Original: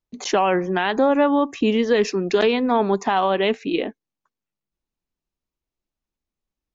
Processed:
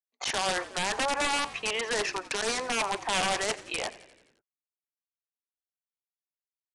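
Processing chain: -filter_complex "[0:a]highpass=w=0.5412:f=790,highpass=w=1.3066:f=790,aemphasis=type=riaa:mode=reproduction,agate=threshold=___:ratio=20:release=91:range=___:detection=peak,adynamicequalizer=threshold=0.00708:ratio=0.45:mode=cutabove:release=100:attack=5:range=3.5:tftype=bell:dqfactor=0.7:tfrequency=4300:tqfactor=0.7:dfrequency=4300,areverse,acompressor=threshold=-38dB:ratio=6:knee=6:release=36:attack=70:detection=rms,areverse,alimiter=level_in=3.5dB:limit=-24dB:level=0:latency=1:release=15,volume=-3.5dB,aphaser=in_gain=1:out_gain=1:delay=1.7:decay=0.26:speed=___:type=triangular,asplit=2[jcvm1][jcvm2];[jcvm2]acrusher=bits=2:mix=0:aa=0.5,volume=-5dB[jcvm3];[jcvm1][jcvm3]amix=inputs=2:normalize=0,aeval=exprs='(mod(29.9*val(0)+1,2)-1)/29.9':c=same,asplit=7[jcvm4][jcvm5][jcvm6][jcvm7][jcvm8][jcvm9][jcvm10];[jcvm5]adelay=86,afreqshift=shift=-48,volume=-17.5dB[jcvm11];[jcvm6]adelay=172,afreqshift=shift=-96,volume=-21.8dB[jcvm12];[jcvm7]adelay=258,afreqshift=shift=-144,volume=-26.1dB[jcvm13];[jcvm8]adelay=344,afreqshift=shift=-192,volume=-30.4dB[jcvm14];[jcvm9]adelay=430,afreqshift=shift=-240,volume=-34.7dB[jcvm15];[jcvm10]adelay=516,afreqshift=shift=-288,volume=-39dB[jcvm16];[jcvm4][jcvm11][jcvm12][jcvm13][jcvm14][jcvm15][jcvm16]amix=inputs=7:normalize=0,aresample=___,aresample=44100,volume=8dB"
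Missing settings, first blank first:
-43dB, -27dB, 2, 22050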